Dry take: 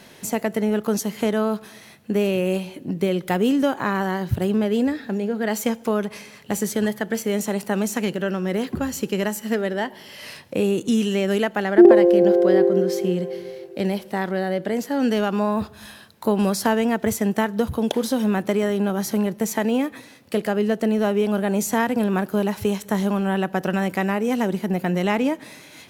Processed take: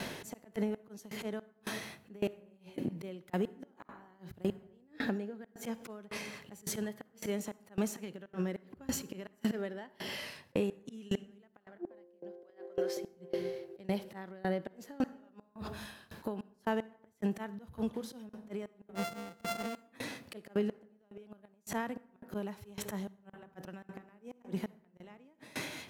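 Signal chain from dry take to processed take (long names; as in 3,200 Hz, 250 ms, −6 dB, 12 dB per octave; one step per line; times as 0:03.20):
0:18.95–0:19.76: samples sorted by size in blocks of 64 samples
volume swells 186 ms
0:12.43–0:12.97: high-pass filter 600 Hz 12 dB per octave
gate with flip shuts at −13 dBFS, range −38 dB
downward compressor 5 to 1, threshold −38 dBFS, peak gain reduction 17 dB
high-shelf EQ 4,600 Hz −5 dB
convolution reverb RT60 1.3 s, pre-delay 42 ms, DRR 15 dB
tremolo with a ramp in dB decaying 1.8 Hz, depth 24 dB
level +9.5 dB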